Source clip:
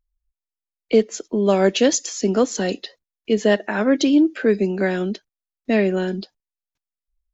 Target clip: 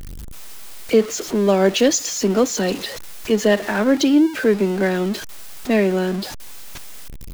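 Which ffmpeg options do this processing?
-af "aeval=exprs='val(0)+0.5*0.0501*sgn(val(0))':c=same"

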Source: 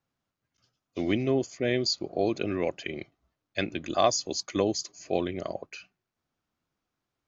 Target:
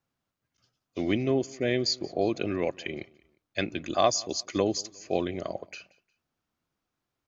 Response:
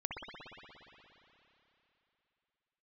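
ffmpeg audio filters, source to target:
-af "aecho=1:1:178|356:0.0668|0.0241"

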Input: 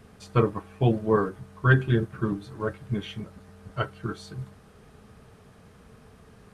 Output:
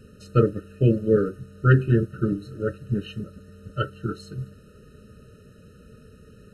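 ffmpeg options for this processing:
-af "bandreject=f=1.6k:w=6.5,afftfilt=real='re*eq(mod(floor(b*sr/1024/620),2),0)':imag='im*eq(mod(floor(b*sr/1024/620),2),0)':win_size=1024:overlap=0.75,volume=3.5dB"

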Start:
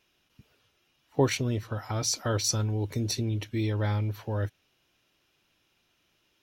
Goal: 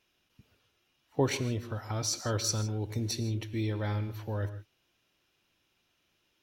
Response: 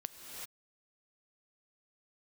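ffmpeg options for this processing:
-filter_complex "[1:a]atrim=start_sample=2205,afade=t=out:st=0.21:d=0.01,atrim=end_sample=9702,asetrate=42777,aresample=44100[a];[0:a][a]afir=irnorm=-1:irlink=0"

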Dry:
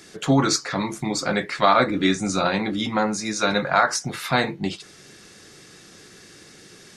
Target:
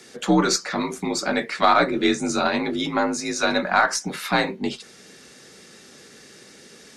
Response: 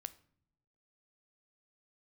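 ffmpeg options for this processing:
-af "afreqshift=47,aeval=exprs='0.596*(cos(1*acos(clip(val(0)/0.596,-1,1)))-cos(1*PI/2))+0.0106*(cos(6*acos(clip(val(0)/0.596,-1,1)))-cos(6*PI/2))':c=same"

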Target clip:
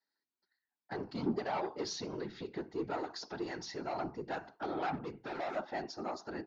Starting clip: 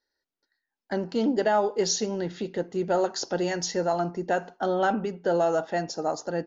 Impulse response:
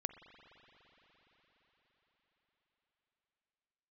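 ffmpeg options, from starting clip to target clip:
-filter_complex "[0:a]asettb=1/sr,asplit=3[a][b][c];[a]atrim=end=4.934[d];[b]atrim=start=4.93:end=5.56,asetpts=PTS-STARTPTS,afade=t=in:d=0.004:c=qsin,afade=t=out:st=0.626:d=0.004:c=qsin,volume=27dB,asoftclip=hard,volume=-27dB[e];[c]atrim=start=5.556[f];[d][e]acrossfade=d=0.004:c1=hsin:c2=qsin[g];[g][f]acrossfade=d=0.004:c1=qsin:c2=hsin,equalizer=f=490:t=o:w=0.46:g=-10,asoftclip=type=tanh:threshold=-25.5dB,asettb=1/sr,asplit=3[h][i][j];[h]atrim=end=3.004[k];[i]atrim=start=3:end=3.86,asetpts=PTS-STARTPTS,afade=t=in:d=0.004:c=qsin,afade=t=out:st=0.856:d=0.004:c=qsin,acompressor=threshold=-31dB:ratio=6[l];[j]atrim=start=3.856[m];[k][l]acrossfade=d=0.004:c1=hsin:c2=qsin[n];[n][m]acrossfade=d=0.004:c1=qsin:c2=hsin,highpass=280,equalizer=f=290:t=q:w=4:g=5,equalizer=f=520:t=q:w=4:g=-7,equalizer=f=1.7k:t=q:w=4:g=-3,equalizer=f=3k:t=q:w=4:g=-7,lowpass=f=4.8k:w=0.5412,lowpass=f=4.8k:w=1.3066,afftfilt=real='hypot(re,im)*cos(2*PI*random(0))':imag='hypot(re,im)*sin(2*PI*random(1))':win_size=512:overlap=0.75,volume=2dB"

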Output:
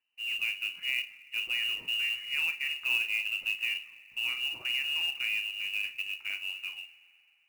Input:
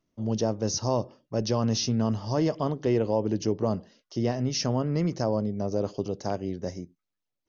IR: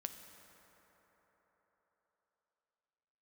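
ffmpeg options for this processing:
-filter_complex "[0:a]lowpass=f=2.6k:t=q:w=0.5098,lowpass=f=2.6k:t=q:w=0.6013,lowpass=f=2.6k:t=q:w=0.9,lowpass=f=2.6k:t=q:w=2.563,afreqshift=-3000,asplit=2[a][b];[1:a]atrim=start_sample=2205,asetrate=61740,aresample=44100,adelay=41[c];[b][c]afir=irnorm=-1:irlink=0,volume=-3.5dB[d];[a][d]amix=inputs=2:normalize=0,acrusher=bits=4:mode=log:mix=0:aa=0.000001,volume=-6.5dB"

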